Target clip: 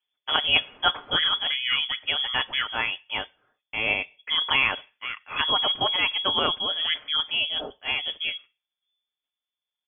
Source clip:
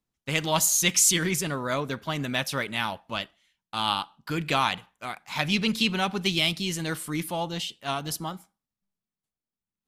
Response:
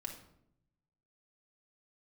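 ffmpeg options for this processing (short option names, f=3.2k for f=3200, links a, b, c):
-af "aecho=1:1:6.2:0.35,lowpass=f=3k:t=q:w=0.5098,lowpass=f=3k:t=q:w=0.6013,lowpass=f=3k:t=q:w=0.9,lowpass=f=3k:t=q:w=2.563,afreqshift=-3500,volume=2.5dB" -ar 44100 -c:a libmp3lame -b:a 96k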